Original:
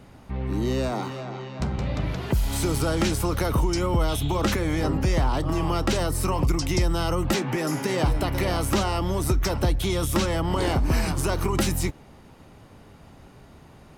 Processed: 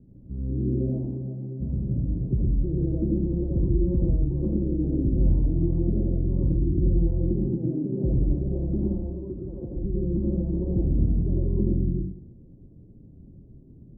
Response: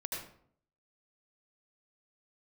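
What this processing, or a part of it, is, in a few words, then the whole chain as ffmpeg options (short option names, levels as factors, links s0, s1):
next room: -filter_complex "[0:a]asettb=1/sr,asplit=3[s0][s1][s2];[s0]atrim=end=8.934[s3];[s1]atrim=start=8.93:end=9.76,asetpts=PTS-STARTPTS,afade=t=in:d=0.004:c=qsin,afade=t=out:st=0.826:d=0.004:c=qsin,aemphasis=mode=production:type=riaa[s4];[s2]atrim=start=9.756[s5];[s3][s4]acrossfade=d=0.004:c1=hsin:c2=qsin[s6];[s6][s5]acrossfade=d=0.004:c1=qsin:c2=hsin,lowpass=f=340:w=0.5412,lowpass=f=340:w=1.3066[s7];[1:a]atrim=start_sample=2205[s8];[s7][s8]afir=irnorm=-1:irlink=0"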